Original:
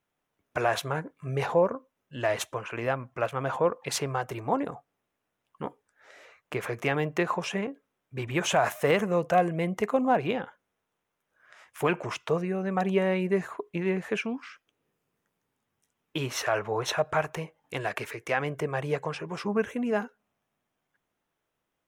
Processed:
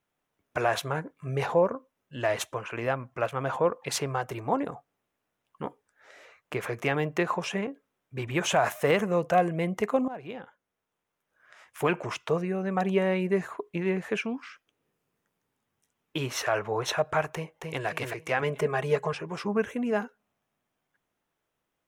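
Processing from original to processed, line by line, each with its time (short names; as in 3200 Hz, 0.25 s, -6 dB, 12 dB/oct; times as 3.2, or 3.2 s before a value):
10.08–11.88 fade in equal-power, from -18 dB
17.34–17.86 echo throw 0.27 s, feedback 35%, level -3.5 dB
18.42–19.13 comb 4.8 ms, depth 93%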